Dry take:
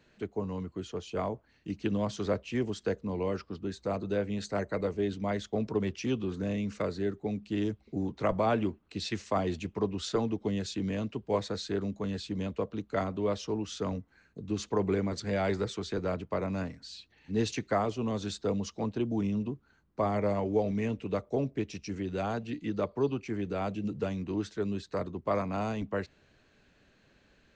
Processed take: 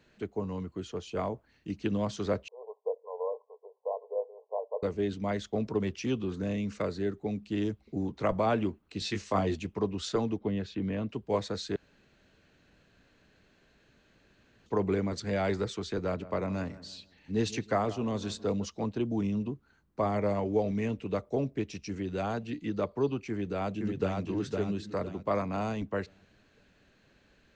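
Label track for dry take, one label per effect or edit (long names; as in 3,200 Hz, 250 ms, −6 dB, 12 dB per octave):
2.480000	4.830000	linear-phase brick-wall band-pass 420–1,100 Hz
8.990000	9.550000	double-tracking delay 20 ms −4.5 dB
10.380000	11.090000	low-pass filter 2,700 Hz
11.760000	14.660000	fill with room tone
16.030000	18.650000	feedback echo with a low-pass in the loop 160 ms, feedback 38%, low-pass 1,900 Hz, level −16 dB
23.290000	24.200000	delay throw 510 ms, feedback 35%, level −3 dB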